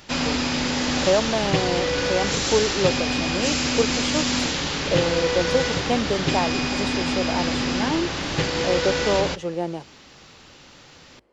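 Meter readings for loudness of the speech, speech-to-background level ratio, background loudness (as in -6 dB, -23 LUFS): -26.5 LUFS, -3.0 dB, -23.5 LUFS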